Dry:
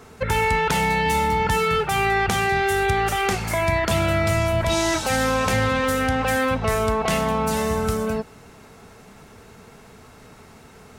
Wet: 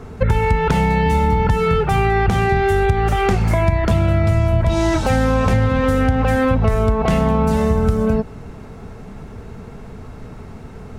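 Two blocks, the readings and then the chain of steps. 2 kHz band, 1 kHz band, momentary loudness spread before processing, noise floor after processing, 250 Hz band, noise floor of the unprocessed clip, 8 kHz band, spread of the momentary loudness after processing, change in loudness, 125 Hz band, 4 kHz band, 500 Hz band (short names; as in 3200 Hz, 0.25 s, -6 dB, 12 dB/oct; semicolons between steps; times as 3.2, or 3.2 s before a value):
-1.5 dB, +1.5 dB, 3 LU, -36 dBFS, +7.0 dB, -47 dBFS, -7.5 dB, 20 LU, +4.0 dB, +9.5 dB, -4.5 dB, +4.0 dB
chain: tilt -3 dB/oct; compressor, threshold -17 dBFS, peak gain reduction 9 dB; gain +5 dB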